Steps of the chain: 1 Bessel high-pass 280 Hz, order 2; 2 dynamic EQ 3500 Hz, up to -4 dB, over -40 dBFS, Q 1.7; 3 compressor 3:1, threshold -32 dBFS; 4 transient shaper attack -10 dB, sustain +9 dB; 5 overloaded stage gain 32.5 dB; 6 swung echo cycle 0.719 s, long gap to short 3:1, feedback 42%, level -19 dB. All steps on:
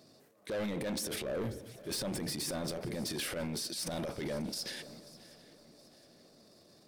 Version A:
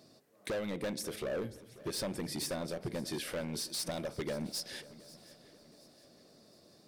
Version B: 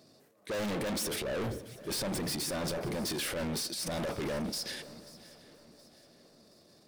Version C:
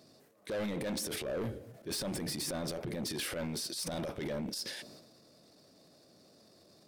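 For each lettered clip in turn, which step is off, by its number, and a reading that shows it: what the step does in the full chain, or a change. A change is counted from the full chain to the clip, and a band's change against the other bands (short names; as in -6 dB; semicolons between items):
4, 500 Hz band +2.0 dB; 3, mean gain reduction 7.0 dB; 6, echo-to-direct -16.5 dB to none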